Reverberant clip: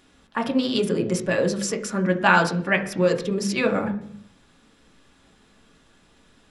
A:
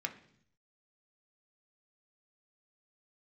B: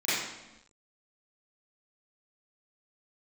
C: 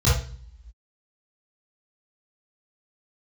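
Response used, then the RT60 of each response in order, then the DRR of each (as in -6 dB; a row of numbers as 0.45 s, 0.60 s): A; 0.65 s, 1.0 s, 0.45 s; 4.0 dB, -15.0 dB, -11.0 dB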